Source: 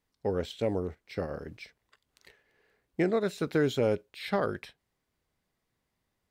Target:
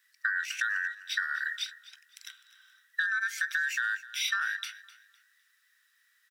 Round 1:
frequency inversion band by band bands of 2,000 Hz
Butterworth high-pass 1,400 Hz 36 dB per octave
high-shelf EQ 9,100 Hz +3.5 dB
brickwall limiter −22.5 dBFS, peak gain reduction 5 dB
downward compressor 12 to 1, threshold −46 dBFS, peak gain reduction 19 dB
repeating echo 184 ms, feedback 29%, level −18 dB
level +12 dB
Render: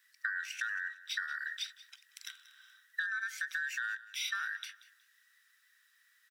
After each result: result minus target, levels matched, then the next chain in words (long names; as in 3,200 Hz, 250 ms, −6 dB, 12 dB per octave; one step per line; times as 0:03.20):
downward compressor: peak gain reduction +6.5 dB; echo 71 ms early
frequency inversion band by band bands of 2,000 Hz
Butterworth high-pass 1,400 Hz 36 dB per octave
high-shelf EQ 9,100 Hz +3.5 dB
brickwall limiter −22.5 dBFS, peak gain reduction 5 dB
downward compressor 12 to 1, threshold −39 dBFS, peak gain reduction 12.5 dB
repeating echo 184 ms, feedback 29%, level −18 dB
level +12 dB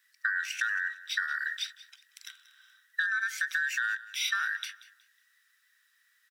echo 71 ms early
frequency inversion band by band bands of 2,000 Hz
Butterworth high-pass 1,400 Hz 36 dB per octave
high-shelf EQ 9,100 Hz +3.5 dB
brickwall limiter −22.5 dBFS, peak gain reduction 5 dB
downward compressor 12 to 1, threshold −39 dBFS, peak gain reduction 12.5 dB
repeating echo 255 ms, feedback 29%, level −18 dB
level +12 dB